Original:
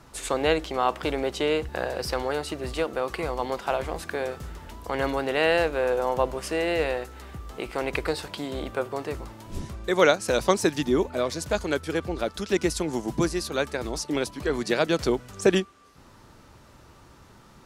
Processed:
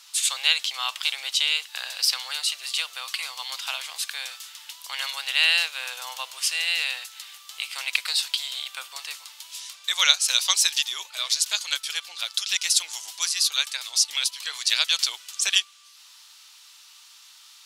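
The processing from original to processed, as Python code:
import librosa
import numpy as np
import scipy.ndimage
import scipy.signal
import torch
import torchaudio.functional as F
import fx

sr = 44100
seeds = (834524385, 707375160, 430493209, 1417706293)

y = scipy.signal.sosfilt(scipy.signal.butter(4, 1100.0, 'highpass', fs=sr, output='sos'), x)
y = fx.high_shelf_res(y, sr, hz=2300.0, db=12.5, q=1.5)
y = y * librosa.db_to_amplitude(-1.0)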